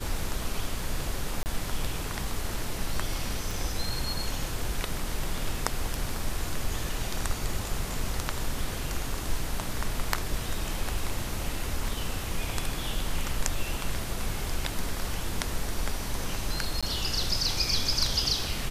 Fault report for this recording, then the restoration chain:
1.43–1.46 s: dropout 29 ms
3.51 s: pop
16.81–16.83 s: dropout 16 ms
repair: de-click; interpolate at 1.43 s, 29 ms; interpolate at 16.81 s, 16 ms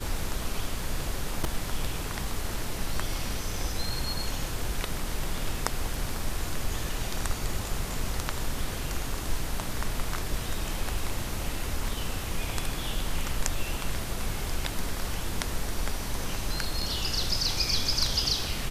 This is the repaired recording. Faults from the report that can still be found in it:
3.51 s: pop

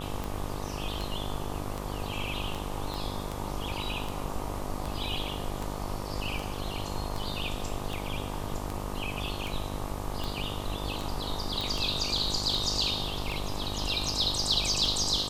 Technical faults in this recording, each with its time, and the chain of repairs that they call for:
buzz 50 Hz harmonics 25 -37 dBFS
tick 78 rpm
2.94 s: pop
11.61 s: pop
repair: de-click; de-hum 50 Hz, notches 25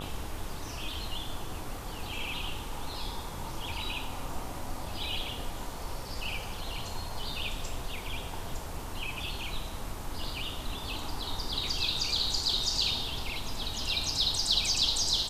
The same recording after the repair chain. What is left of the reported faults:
2.94 s: pop

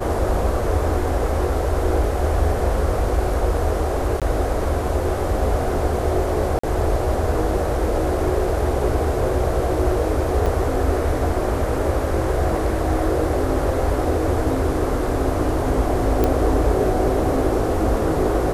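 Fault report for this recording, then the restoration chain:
4.20–4.22 s: dropout 17 ms
6.59–6.63 s: dropout 44 ms
10.46 s: dropout 3.8 ms
16.24 s: pop -6 dBFS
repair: de-click; interpolate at 4.20 s, 17 ms; interpolate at 6.59 s, 44 ms; interpolate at 10.46 s, 3.8 ms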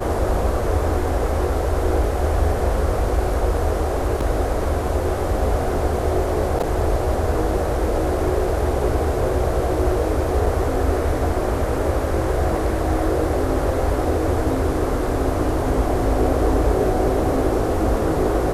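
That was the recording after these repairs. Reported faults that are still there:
nothing left

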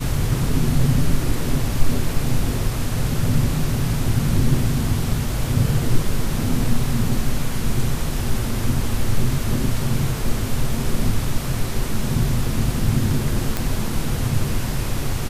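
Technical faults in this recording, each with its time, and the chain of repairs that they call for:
13.57 s: pop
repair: de-click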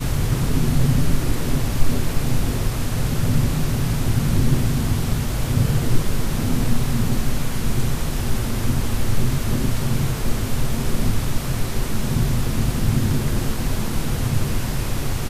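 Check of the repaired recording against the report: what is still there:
nothing left

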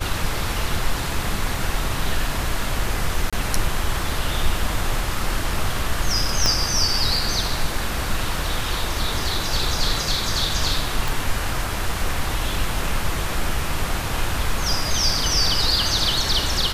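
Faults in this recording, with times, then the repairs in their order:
3.30–3.33 s: dropout 26 ms
6.46 s: pop -3 dBFS
11.08 s: pop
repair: de-click; interpolate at 3.30 s, 26 ms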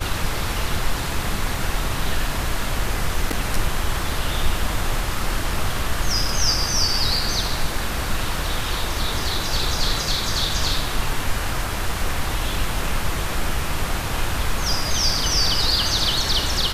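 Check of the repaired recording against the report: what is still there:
6.46 s: pop

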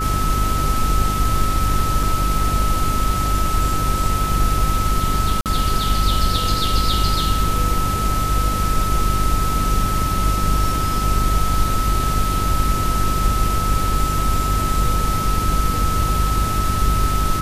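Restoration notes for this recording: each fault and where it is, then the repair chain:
hum 50 Hz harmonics 8 -23 dBFS
whine 1.3 kHz -22 dBFS
2.03 s: dropout 3.4 ms
5.41–5.46 s: dropout 48 ms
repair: de-hum 50 Hz, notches 8; band-stop 1.3 kHz, Q 30; interpolate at 2.03 s, 3.4 ms; interpolate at 5.41 s, 48 ms

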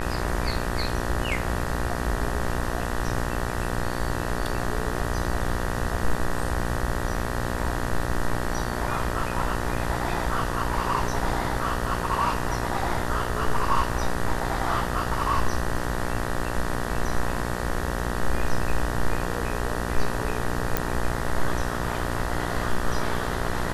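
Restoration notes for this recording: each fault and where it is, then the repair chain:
buzz 60 Hz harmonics 32 -30 dBFS
20.77 s: pop -6 dBFS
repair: de-click; de-hum 60 Hz, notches 32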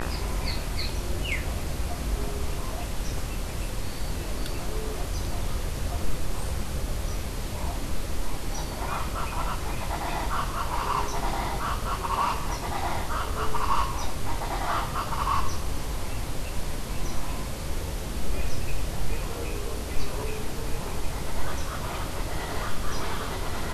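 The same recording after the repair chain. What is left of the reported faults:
nothing left

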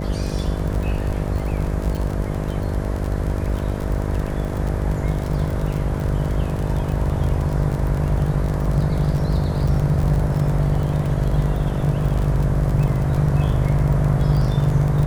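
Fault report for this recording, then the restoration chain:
buzz 50 Hz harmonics 13 -25 dBFS
crackle 39 per s -24 dBFS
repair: de-click; de-hum 50 Hz, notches 13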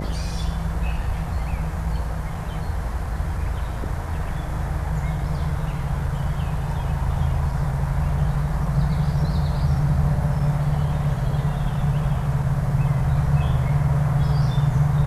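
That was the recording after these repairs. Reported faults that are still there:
nothing left

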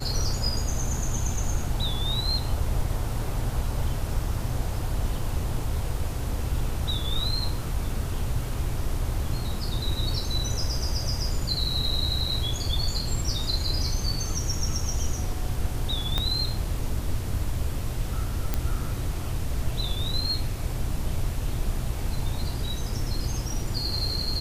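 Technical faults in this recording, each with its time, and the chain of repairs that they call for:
16.18 s: pop -12 dBFS
18.54 s: pop -11 dBFS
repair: de-click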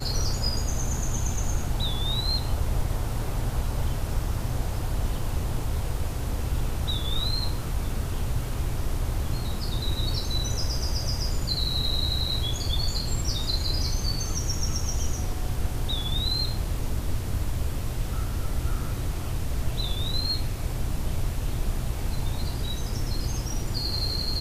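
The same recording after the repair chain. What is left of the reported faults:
16.18 s: pop

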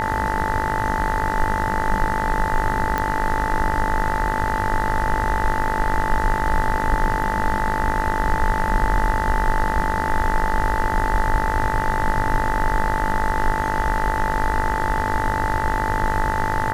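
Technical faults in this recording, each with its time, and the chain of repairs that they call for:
buzz 50 Hz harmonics 40 -26 dBFS
whine 880 Hz -23 dBFS
2.98 s: pop -9 dBFS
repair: de-click; de-hum 50 Hz, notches 40; band-stop 880 Hz, Q 30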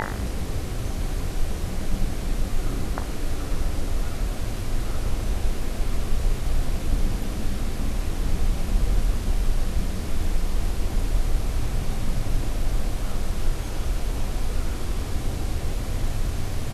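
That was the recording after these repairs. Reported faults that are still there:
nothing left

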